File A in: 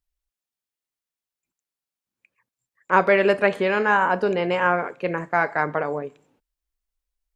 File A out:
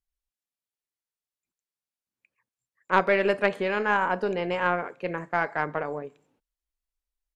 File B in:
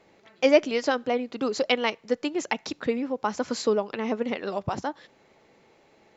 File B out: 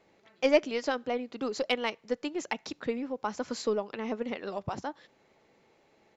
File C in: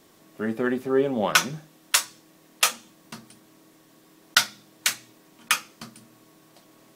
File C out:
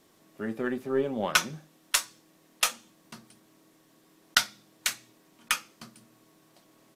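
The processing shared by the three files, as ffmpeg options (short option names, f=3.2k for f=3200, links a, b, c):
-af "aeval=exprs='0.891*(cos(1*acos(clip(val(0)/0.891,-1,1)))-cos(1*PI/2))+0.126*(cos(3*acos(clip(val(0)/0.891,-1,1)))-cos(3*PI/2))+0.00708*(cos(8*acos(clip(val(0)/0.891,-1,1)))-cos(8*PI/2))':c=same,aresample=32000,aresample=44100,volume=-1dB"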